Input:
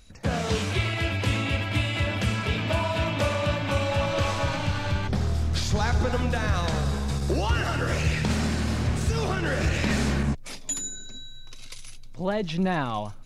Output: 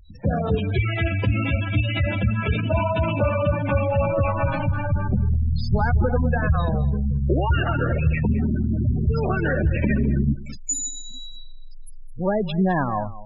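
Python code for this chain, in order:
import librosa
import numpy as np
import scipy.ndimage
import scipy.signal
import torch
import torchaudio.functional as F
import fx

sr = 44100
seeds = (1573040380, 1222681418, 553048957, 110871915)

y = fx.spec_gate(x, sr, threshold_db=-15, keep='strong')
y = y + 10.0 ** (-17.0 / 20.0) * np.pad(y, (int(210 * sr / 1000.0), 0))[:len(y)]
y = y * librosa.db_to_amplitude(5.0)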